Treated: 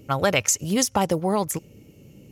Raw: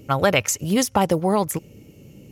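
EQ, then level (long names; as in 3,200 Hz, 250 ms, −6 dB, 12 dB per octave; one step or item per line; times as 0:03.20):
dynamic equaliser 6,500 Hz, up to +6 dB, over −38 dBFS, Q 1
−3.0 dB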